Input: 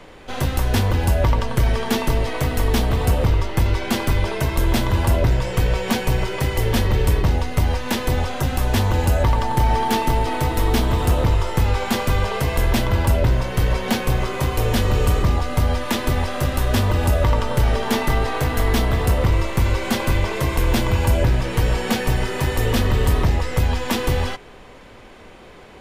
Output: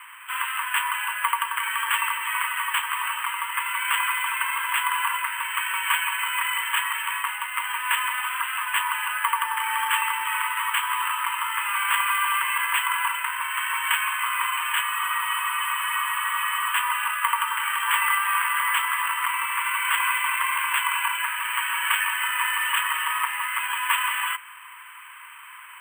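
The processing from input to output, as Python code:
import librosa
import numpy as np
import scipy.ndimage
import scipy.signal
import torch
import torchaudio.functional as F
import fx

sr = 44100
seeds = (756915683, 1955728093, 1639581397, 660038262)

y = scipy.signal.sosfilt(scipy.signal.cheby1(5, 1.0, [970.0, 3100.0], 'bandpass', fs=sr, output='sos'), x)
y = np.repeat(y[::4], 4)[:len(y)]
y = fx.spec_freeze(y, sr, seeds[0], at_s=14.85, hold_s=1.89)
y = y * 10.0 ** (7.0 / 20.0)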